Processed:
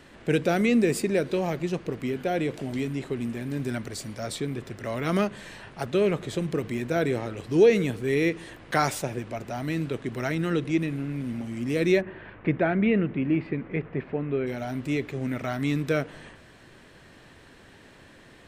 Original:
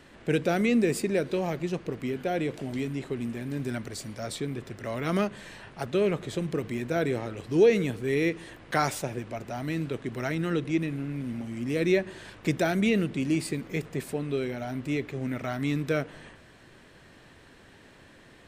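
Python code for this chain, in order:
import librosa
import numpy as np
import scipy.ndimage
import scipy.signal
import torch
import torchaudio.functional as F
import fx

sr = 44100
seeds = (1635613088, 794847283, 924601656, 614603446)

y = fx.lowpass(x, sr, hz=2400.0, slope=24, at=(12.0, 14.46), fade=0.02)
y = y * 10.0 ** (2.0 / 20.0)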